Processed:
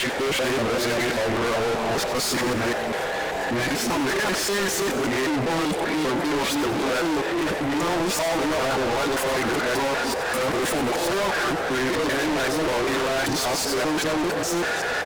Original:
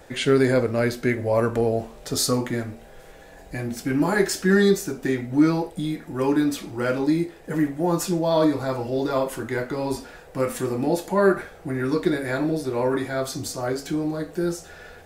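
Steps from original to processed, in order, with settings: local time reversal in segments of 0.195 s; overdrive pedal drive 35 dB, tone 2400 Hz, clips at -5.5 dBFS; soft clip -23 dBFS, distortion -9 dB; on a send: frequency-shifting echo 93 ms, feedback 60%, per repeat +130 Hz, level -12 dB

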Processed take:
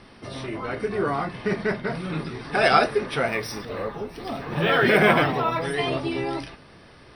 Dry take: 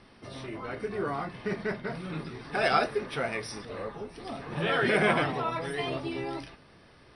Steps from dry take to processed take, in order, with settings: 3.28–5.63 decimation joined by straight lines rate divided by 2×; gain +7 dB

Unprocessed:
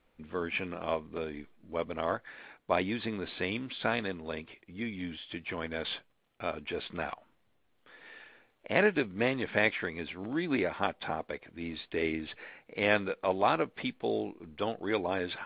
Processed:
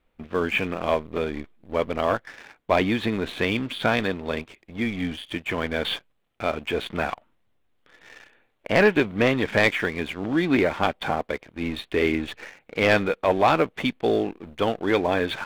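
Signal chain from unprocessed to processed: low shelf 78 Hz +6.5 dB; sample leveller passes 2; gain +2 dB

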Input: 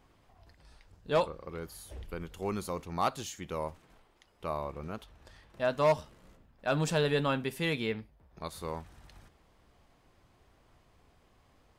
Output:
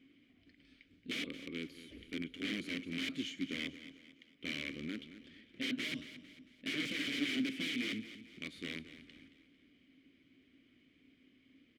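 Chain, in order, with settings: bell 2700 Hz +2.5 dB 0.45 oct; wrapped overs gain 30 dB; vowel filter i; on a send: feedback echo 0.224 s, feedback 42%, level -13.5 dB; on the sum: gain +12 dB

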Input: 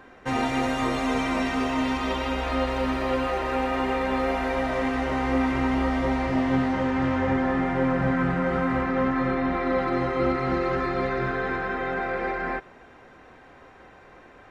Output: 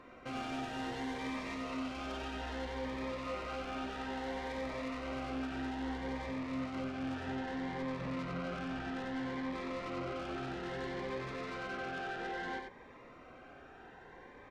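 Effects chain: in parallel at -0.5 dB: compressor, threshold -35 dBFS, peak gain reduction 15 dB; on the sum: LPF 3200 Hz 6 dB/oct; soft clip -27.5 dBFS, distortion -8 dB; low shelf 270 Hz -5.5 dB; echo 91 ms -5 dB; cascading phaser rising 0.61 Hz; gain -7.5 dB

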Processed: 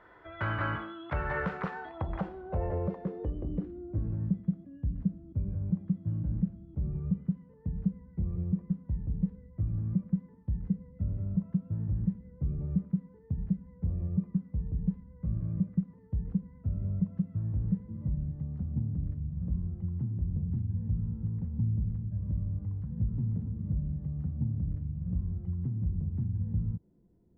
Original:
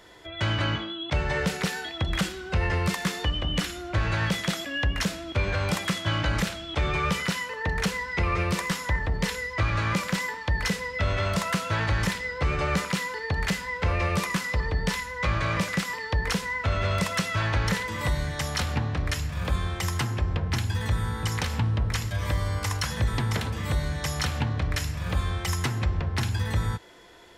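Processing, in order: low-pass sweep 1400 Hz -> 190 Hz, 1.4–4.48; gain -7 dB

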